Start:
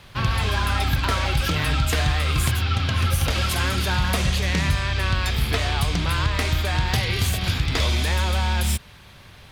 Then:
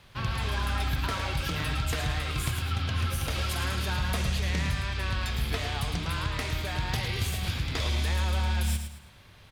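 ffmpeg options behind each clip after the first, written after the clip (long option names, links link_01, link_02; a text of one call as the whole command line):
ffmpeg -i in.wav -af "aecho=1:1:109|218|327|436:0.398|0.135|0.046|0.0156,volume=-8.5dB" out.wav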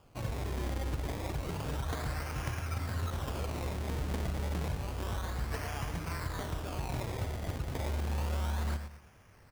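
ffmpeg -i in.wav -af "acrusher=samples=22:mix=1:aa=0.000001:lfo=1:lforange=22:lforate=0.3,volume=-6dB" out.wav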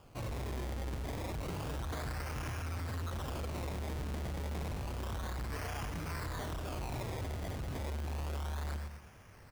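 ffmpeg -i in.wav -af "asoftclip=type=tanh:threshold=-38.5dB,volume=3dB" out.wav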